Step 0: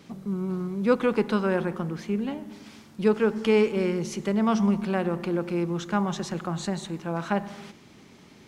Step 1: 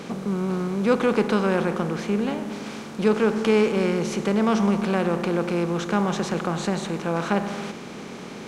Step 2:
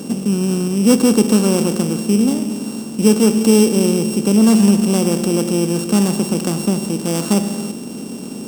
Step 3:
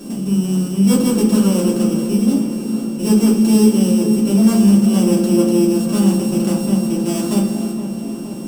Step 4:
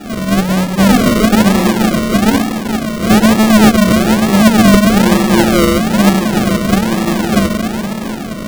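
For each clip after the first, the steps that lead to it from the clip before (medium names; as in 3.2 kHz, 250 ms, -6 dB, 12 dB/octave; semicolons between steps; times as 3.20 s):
spectral levelling over time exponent 0.6
sorted samples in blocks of 16 samples; graphic EQ 250/2000/8000 Hz +11/-11/+10 dB; trim +2 dB
feedback echo behind a low-pass 468 ms, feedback 67%, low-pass 2.3 kHz, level -11 dB; simulated room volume 130 m³, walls furnished, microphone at 2.9 m; trim -9.5 dB
square wave that keeps the level; decimation with a swept rate 41×, swing 60% 1.1 Hz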